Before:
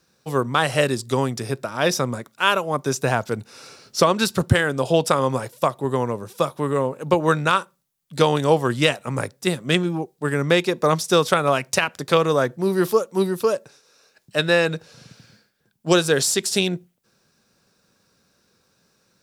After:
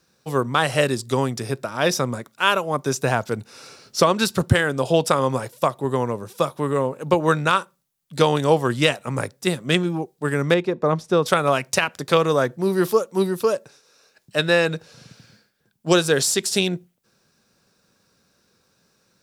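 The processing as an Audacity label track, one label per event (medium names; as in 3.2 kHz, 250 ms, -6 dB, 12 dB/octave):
10.540000	11.260000	low-pass 1 kHz 6 dB/octave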